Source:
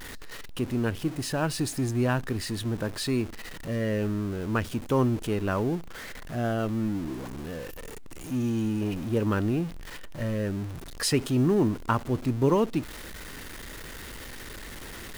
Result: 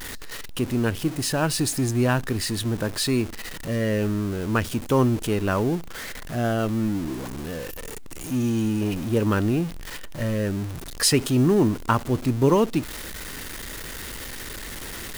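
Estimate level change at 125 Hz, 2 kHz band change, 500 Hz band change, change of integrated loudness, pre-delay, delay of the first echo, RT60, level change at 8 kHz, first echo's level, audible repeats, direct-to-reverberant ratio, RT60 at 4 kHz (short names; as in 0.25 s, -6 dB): +4.0 dB, +5.0 dB, +4.0 dB, +3.5 dB, none, none, none, +8.5 dB, none, none, none, none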